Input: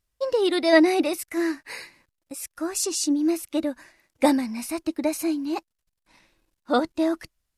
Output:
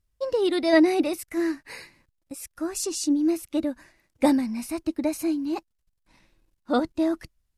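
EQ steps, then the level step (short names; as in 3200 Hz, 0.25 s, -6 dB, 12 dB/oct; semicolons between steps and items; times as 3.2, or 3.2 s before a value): low shelf 240 Hz +10.5 dB; -4.0 dB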